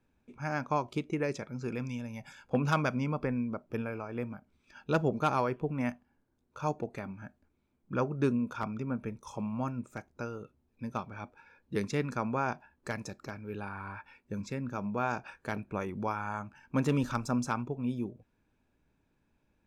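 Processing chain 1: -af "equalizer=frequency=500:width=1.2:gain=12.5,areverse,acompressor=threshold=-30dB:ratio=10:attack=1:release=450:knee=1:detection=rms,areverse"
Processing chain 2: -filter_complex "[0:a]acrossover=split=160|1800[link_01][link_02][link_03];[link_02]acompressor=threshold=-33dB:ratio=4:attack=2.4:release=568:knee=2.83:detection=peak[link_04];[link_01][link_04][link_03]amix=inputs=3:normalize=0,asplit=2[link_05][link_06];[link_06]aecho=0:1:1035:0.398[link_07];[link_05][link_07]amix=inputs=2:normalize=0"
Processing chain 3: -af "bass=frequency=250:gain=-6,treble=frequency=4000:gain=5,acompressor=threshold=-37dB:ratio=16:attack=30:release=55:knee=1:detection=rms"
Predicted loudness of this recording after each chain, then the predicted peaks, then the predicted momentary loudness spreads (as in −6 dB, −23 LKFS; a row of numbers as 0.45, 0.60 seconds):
−40.0, −38.5, −41.0 LKFS; −24.5, −19.0, −22.5 dBFS; 8, 10, 8 LU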